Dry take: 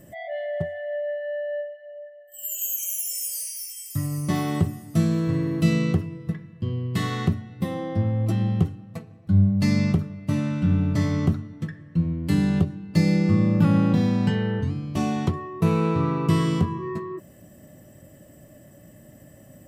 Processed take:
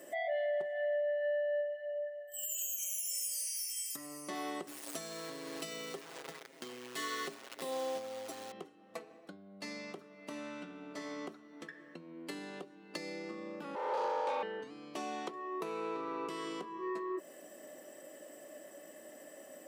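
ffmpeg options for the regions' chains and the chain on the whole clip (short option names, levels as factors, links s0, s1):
-filter_complex "[0:a]asettb=1/sr,asplit=3[s0][s1][s2];[s0]atrim=end=4.674[s3];[s1]atrim=start=4.67:end=8.52,asetpts=PTS-STARTPTS,afade=t=in:d=0.004:c=qsin,afade=t=out:st=3.846:d=0.004:c=qsin,highshelf=f=3600:g=9,acrusher=bits=7:dc=4:mix=0:aa=0.000001,aecho=1:1:7.4:0.9,atrim=end_sample=169785[s4];[s2]atrim=start=8.516[s5];[s3][s4]acrossfade=d=0.004:c1=hsin:c2=qsin[s6];[s6][s5]acrossfade=d=0.004:c1=qsin:c2=hsin,asettb=1/sr,asplit=3[s7][s8][s9];[s7]atrim=end=13.754[s10];[s8]atrim=start=13.75:end=14.43,asetpts=PTS-STARTPTS,afade=t=in:d=0.004:c=qsin,afade=t=out:st=0.676:d=0.004:c=qsin,volume=11.9,asoftclip=hard,volume=0.0841,aeval=exprs='val(0)*sin(2*PI*700*n/s)':c=same[s11];[s9]atrim=start=14.426[s12];[s10][s11]acrossfade=d=0.004:c1=hsin:c2=qsin[s13];[s13][s12]acrossfade=d=0.004:c1=qsin:c2=hsin,acompressor=threshold=0.0178:ratio=4,highpass=f=350:w=0.5412,highpass=f=350:w=1.3066,equalizer=f=13000:t=o:w=0.39:g=-8,volume=1.26"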